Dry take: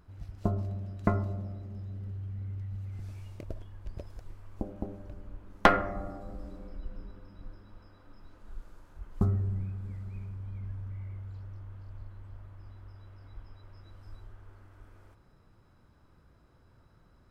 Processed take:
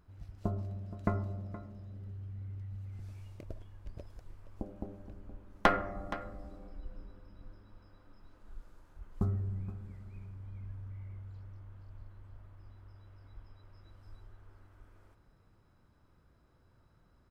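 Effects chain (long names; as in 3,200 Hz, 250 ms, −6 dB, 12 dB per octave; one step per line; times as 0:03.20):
single-tap delay 471 ms −14.5 dB
level −5 dB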